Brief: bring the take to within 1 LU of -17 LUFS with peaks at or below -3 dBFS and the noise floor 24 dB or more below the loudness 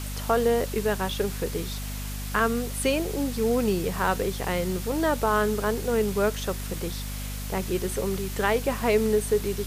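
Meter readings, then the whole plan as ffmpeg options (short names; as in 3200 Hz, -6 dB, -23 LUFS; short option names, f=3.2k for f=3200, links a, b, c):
hum 50 Hz; harmonics up to 250 Hz; hum level -31 dBFS; noise floor -33 dBFS; noise floor target -51 dBFS; loudness -26.5 LUFS; peak -9.0 dBFS; loudness target -17.0 LUFS
-> -af "bandreject=f=50:t=h:w=4,bandreject=f=100:t=h:w=4,bandreject=f=150:t=h:w=4,bandreject=f=200:t=h:w=4,bandreject=f=250:t=h:w=4"
-af "afftdn=nr=18:nf=-33"
-af "volume=9.5dB,alimiter=limit=-3dB:level=0:latency=1"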